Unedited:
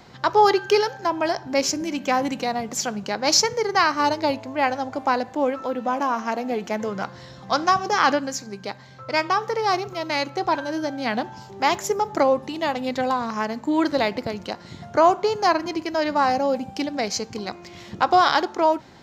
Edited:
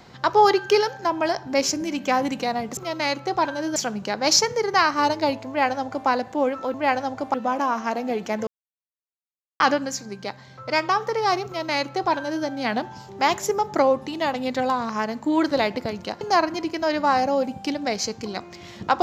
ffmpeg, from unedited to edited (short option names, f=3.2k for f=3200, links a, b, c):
-filter_complex "[0:a]asplit=8[a][b][c][d][e][f][g][h];[a]atrim=end=2.772[i];[b]atrim=start=9.868:end=10.862[j];[c]atrim=start=2.768:end=5.752[k];[d]atrim=start=4.488:end=5.092[l];[e]atrim=start=5.748:end=6.88,asetpts=PTS-STARTPTS,afade=t=out:st=1.128:d=0.004:c=hsin[m];[f]atrim=start=6.88:end=8.01,asetpts=PTS-STARTPTS,volume=0[n];[g]atrim=start=8.01:end=14.622,asetpts=PTS-STARTPTS,afade=t=in:d=0.004:c=hsin[o];[h]atrim=start=15.328[p];[i][j]acrossfade=d=0.004:c1=hsin:c2=hsin[q];[q][k]acrossfade=d=0.004:c1=hsin:c2=hsin[r];[r][l]acrossfade=d=0.004:c1=hsin:c2=hsin[s];[m][n][o]concat=n=3:v=0:a=1[t];[s][t]acrossfade=d=0.004:c1=hsin:c2=hsin[u];[u][p]acrossfade=d=0.004:c1=hsin:c2=hsin"